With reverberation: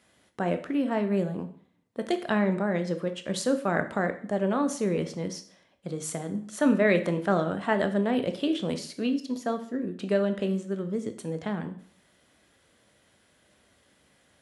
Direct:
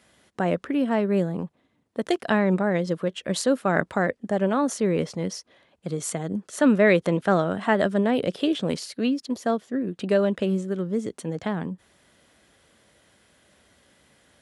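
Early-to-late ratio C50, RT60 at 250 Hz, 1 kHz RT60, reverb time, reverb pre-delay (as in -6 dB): 12.5 dB, 0.50 s, 0.50 s, 0.50 s, 7 ms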